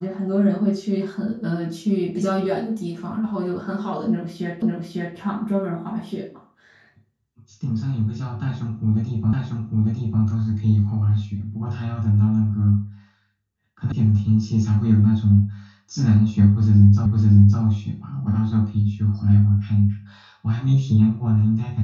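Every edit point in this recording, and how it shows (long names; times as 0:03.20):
0:04.62: the same again, the last 0.55 s
0:09.33: the same again, the last 0.9 s
0:13.92: cut off before it has died away
0:17.06: the same again, the last 0.56 s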